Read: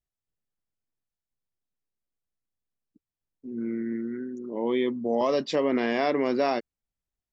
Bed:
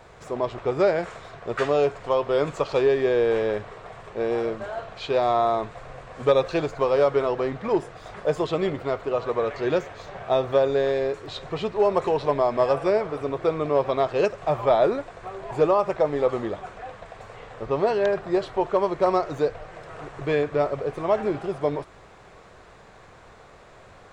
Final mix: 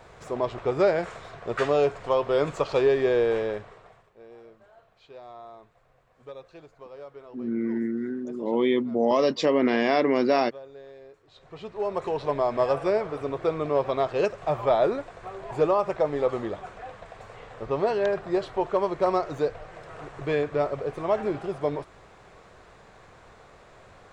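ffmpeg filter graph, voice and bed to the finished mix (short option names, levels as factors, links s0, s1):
-filter_complex "[0:a]adelay=3900,volume=1.41[s0];[1:a]volume=9.44,afade=t=out:st=3.16:d=0.94:silence=0.0794328,afade=t=in:st=11.28:d=1.23:silence=0.0944061[s1];[s0][s1]amix=inputs=2:normalize=0"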